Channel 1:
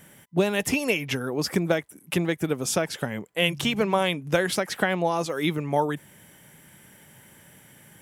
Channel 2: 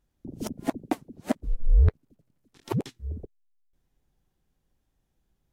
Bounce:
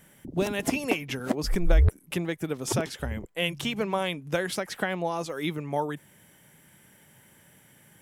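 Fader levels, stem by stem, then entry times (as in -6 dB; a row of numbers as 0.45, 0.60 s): -5.0, -1.0 dB; 0.00, 0.00 s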